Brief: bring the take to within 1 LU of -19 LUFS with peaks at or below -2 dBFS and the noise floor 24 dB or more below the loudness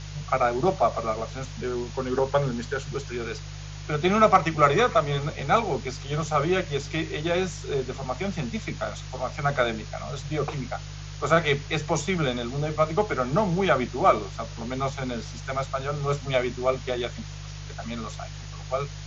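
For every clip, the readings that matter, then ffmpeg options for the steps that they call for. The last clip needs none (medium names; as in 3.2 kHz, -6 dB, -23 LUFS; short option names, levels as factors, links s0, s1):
hum 50 Hz; highest harmonic 150 Hz; hum level -36 dBFS; noise floor -38 dBFS; noise floor target -51 dBFS; loudness -26.5 LUFS; peak level -5.0 dBFS; loudness target -19.0 LUFS
-> -af "bandreject=f=50:t=h:w=4,bandreject=f=100:t=h:w=4,bandreject=f=150:t=h:w=4"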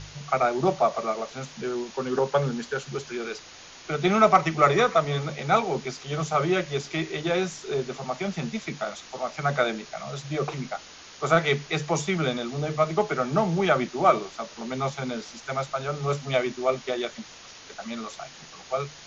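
hum not found; noise floor -46 dBFS; noise floor target -51 dBFS
-> -af "afftdn=nr=6:nf=-46"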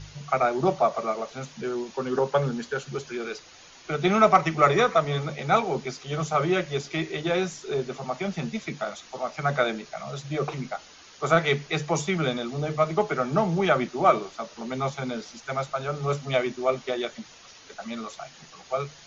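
noise floor -50 dBFS; noise floor target -51 dBFS
-> -af "afftdn=nr=6:nf=-50"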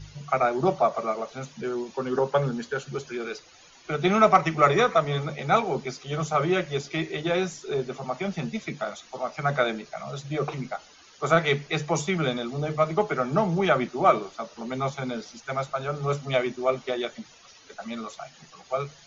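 noise floor -53 dBFS; loudness -26.5 LUFS; peak level -5.0 dBFS; loudness target -19.0 LUFS
-> -af "volume=2.37,alimiter=limit=0.794:level=0:latency=1"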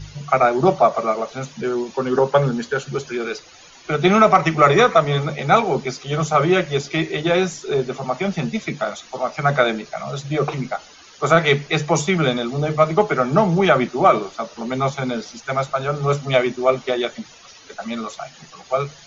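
loudness -19.5 LUFS; peak level -2.0 dBFS; noise floor -45 dBFS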